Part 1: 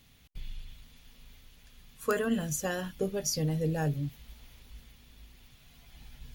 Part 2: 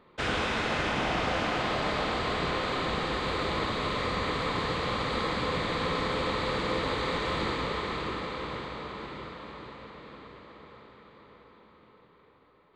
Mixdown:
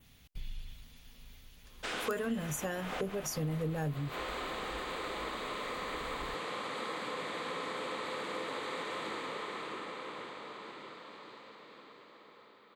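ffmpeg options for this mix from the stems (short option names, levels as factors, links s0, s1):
-filter_complex "[0:a]volume=1,asplit=2[s0][s1];[1:a]highpass=270,aemphasis=mode=production:type=50kf,adelay=1650,volume=0.447[s2];[s1]apad=whole_len=635412[s3];[s2][s3]sidechaincompress=threshold=0.0126:ratio=8:attack=7:release=132[s4];[s0][s4]amix=inputs=2:normalize=0,adynamicequalizer=threshold=0.00126:dfrequency=4800:dqfactor=1.5:tfrequency=4800:tqfactor=1.5:attack=5:release=100:ratio=0.375:range=4:mode=cutabove:tftype=bell,acompressor=threshold=0.0178:ratio=2"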